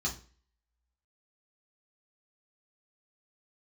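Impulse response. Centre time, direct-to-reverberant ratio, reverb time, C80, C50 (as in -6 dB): 17 ms, -4.0 dB, 0.40 s, 17.5 dB, 11.0 dB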